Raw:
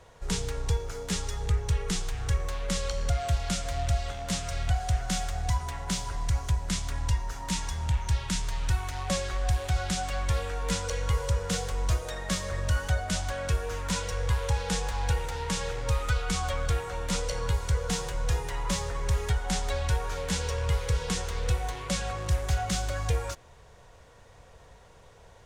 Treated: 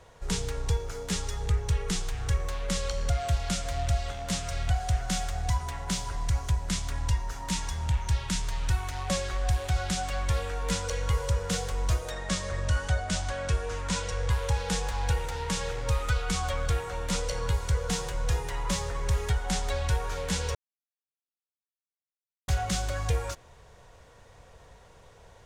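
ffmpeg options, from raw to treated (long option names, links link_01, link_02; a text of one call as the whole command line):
ffmpeg -i in.wav -filter_complex "[0:a]asettb=1/sr,asplit=3[link_01][link_02][link_03];[link_01]atrim=end=12.124[link_04];[link_02]atrim=start=12.12:end=14.3,asetpts=PTS-STARTPTS,afade=type=in:duration=0.004:curve=qsin,afade=type=out:start_time=2.176:duration=0.004:curve=qsin,lowpass=frequency=9600:width=0.5412,lowpass=frequency=9600:width=1.3066[link_05];[link_03]atrim=start=14.296[link_06];[link_04][link_05]acrossfade=duration=0.004:curve1=hsin:curve2=qsin[link_07];[link_07][link_06]acrossfade=duration=0.004:curve1=qsin:curve2=hsin,asplit=3[link_08][link_09][link_10];[link_08]atrim=end=20.55,asetpts=PTS-STARTPTS,afade=type=out:start_time=20.546:duration=0.004:curve=hsin[link_11];[link_09]atrim=start=20.55:end=22.48,asetpts=PTS-STARTPTS,volume=0[link_12];[link_10]atrim=start=22.48,asetpts=PTS-STARTPTS,afade=type=in:duration=0.004:curve=hsin[link_13];[link_11][link_12][link_13]concat=n=3:v=0:a=1" out.wav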